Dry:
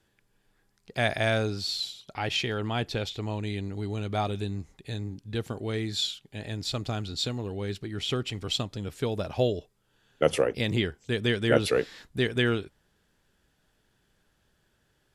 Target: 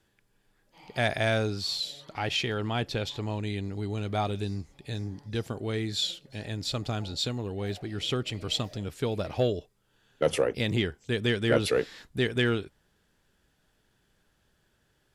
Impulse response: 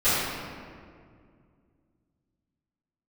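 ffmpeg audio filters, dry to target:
-filter_complex "[0:a]asoftclip=type=tanh:threshold=0.237,asplit=2[s0][s1];[s1]asetrate=59535,aresample=44100[s2];[1:a]atrim=start_sample=2205,afade=t=out:st=0.17:d=0.01,atrim=end_sample=7938[s3];[s2][s3]afir=irnorm=-1:irlink=0,volume=0.00944[s4];[s0][s4]amix=inputs=2:normalize=0"

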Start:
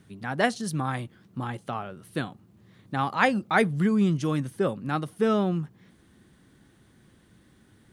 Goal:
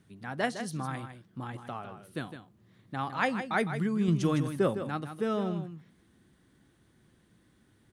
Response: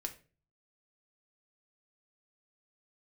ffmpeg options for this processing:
-filter_complex "[0:a]asettb=1/sr,asplit=3[s0][s1][s2];[s0]atrim=end=4.084[s3];[s1]atrim=start=4.08:end=4.83,asetpts=PTS-STARTPTS,afade=t=in:d=0.004:c=qsin,afade=t=out:st=0.746:d=0.004:c=qsin,acontrast=51[s4];[s2]atrim=start=4.826[s5];[s3][s4]acrossfade=d=0.004:c1=hsin:c2=qsin[s6];[s6][s5]acrossfade=d=0.004:c1=qsin:c2=hsin,aecho=1:1:158:0.335,asplit=2[s7][s8];[1:a]atrim=start_sample=2205[s9];[s8][s9]afir=irnorm=-1:irlink=0,volume=0.211[s10];[s7][s10]amix=inputs=2:normalize=0,volume=0.398"

